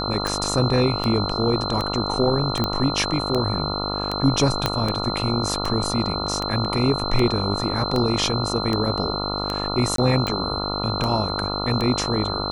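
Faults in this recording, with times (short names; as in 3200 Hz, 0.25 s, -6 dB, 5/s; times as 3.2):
buzz 50 Hz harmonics 28 -28 dBFS
tick 78 rpm
tone 4100 Hz -28 dBFS
2.64 pop -9 dBFS
4.66 pop -5 dBFS
9.96–9.98 gap 23 ms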